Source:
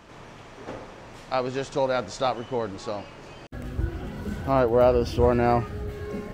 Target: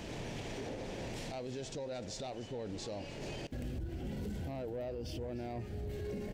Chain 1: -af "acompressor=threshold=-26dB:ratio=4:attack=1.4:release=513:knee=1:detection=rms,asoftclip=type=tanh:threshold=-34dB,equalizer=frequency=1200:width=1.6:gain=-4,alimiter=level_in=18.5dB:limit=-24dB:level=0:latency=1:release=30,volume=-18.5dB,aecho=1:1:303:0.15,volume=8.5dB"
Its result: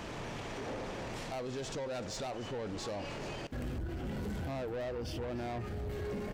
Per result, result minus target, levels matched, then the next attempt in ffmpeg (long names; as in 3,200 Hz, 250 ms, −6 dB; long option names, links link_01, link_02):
downward compressor: peak gain reduction −8 dB; 1,000 Hz band +3.0 dB
-af "acompressor=threshold=-37dB:ratio=4:attack=1.4:release=513:knee=1:detection=rms,asoftclip=type=tanh:threshold=-34dB,equalizer=frequency=1200:width=1.6:gain=-4,alimiter=level_in=18.5dB:limit=-24dB:level=0:latency=1:release=30,volume=-18.5dB,aecho=1:1:303:0.15,volume=8.5dB"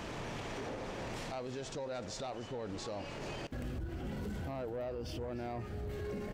1,000 Hz band +3.5 dB
-af "acompressor=threshold=-37dB:ratio=4:attack=1.4:release=513:knee=1:detection=rms,asoftclip=type=tanh:threshold=-34dB,equalizer=frequency=1200:width=1.6:gain=-15.5,alimiter=level_in=18.5dB:limit=-24dB:level=0:latency=1:release=30,volume=-18.5dB,aecho=1:1:303:0.15,volume=8.5dB"